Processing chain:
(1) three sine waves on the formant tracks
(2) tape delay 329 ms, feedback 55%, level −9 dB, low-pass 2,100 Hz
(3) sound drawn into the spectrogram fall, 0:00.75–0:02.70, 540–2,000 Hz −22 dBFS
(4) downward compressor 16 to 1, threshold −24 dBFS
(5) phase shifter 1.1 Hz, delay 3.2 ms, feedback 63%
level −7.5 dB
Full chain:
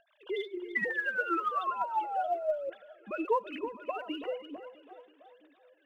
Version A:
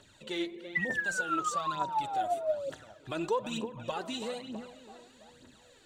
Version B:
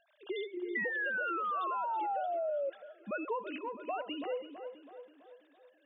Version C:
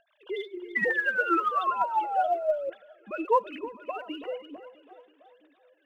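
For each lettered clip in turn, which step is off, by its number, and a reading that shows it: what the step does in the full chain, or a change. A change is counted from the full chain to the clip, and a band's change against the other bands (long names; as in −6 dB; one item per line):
1, 4 kHz band +7.0 dB
5, change in crest factor −5.5 dB
4, average gain reduction 2.5 dB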